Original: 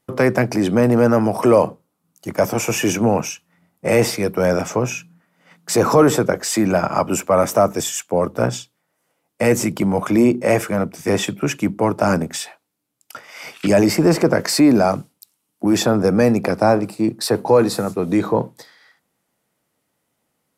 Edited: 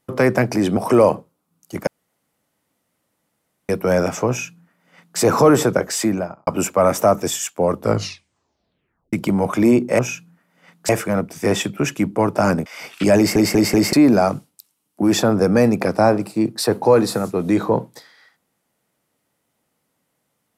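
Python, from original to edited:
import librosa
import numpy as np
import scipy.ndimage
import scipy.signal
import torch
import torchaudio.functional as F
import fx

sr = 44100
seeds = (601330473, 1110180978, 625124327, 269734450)

y = fx.studio_fade_out(x, sr, start_s=6.47, length_s=0.53)
y = fx.edit(y, sr, fx.cut(start_s=0.77, length_s=0.53),
    fx.room_tone_fill(start_s=2.4, length_s=1.82),
    fx.duplicate(start_s=4.82, length_s=0.9, to_s=10.52),
    fx.tape_stop(start_s=8.32, length_s=1.34),
    fx.cut(start_s=12.29, length_s=1.0),
    fx.stutter_over(start_s=13.8, slice_s=0.19, count=4), tone=tone)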